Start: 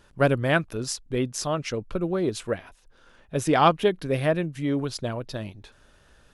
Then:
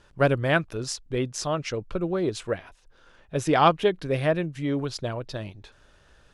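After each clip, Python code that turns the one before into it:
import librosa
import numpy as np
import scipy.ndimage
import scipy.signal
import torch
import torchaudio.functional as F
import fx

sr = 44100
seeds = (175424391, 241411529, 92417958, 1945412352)

y = scipy.signal.sosfilt(scipy.signal.butter(2, 8300.0, 'lowpass', fs=sr, output='sos'), x)
y = fx.peak_eq(y, sr, hz=230.0, db=-4.5, octaves=0.43)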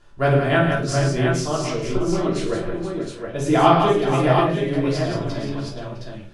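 y = fx.echo_multitap(x, sr, ms=(54, 111, 173, 477, 659, 717), db=(-9.5, -10.5, -6.0, -10.0, -16.5, -5.0))
y = fx.room_shoebox(y, sr, seeds[0], volume_m3=290.0, walls='furnished', distance_m=3.1)
y = y * 10.0 ** (-3.5 / 20.0)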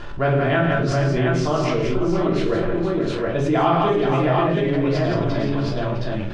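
y = fx.law_mismatch(x, sr, coded='A')
y = scipy.signal.sosfilt(scipy.signal.butter(2, 3500.0, 'lowpass', fs=sr, output='sos'), y)
y = fx.env_flatten(y, sr, amount_pct=70)
y = y * 10.0 ** (-5.0 / 20.0)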